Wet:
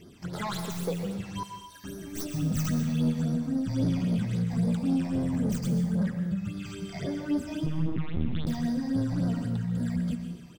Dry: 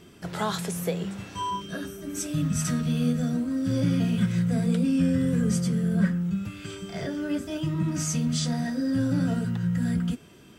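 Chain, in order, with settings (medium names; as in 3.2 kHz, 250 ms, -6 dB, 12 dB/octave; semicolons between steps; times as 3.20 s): tracing distortion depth 0.12 ms; delay 118 ms -15 dB; saturation -22.5 dBFS, distortion -14 dB; 1.43–1.84 s: differentiator; 7.66–8.47 s: LPC vocoder at 8 kHz pitch kept; phase shifter stages 8, 3.7 Hz, lowest notch 400–2700 Hz; plate-style reverb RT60 0.78 s, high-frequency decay 1×, pre-delay 115 ms, DRR 7.5 dB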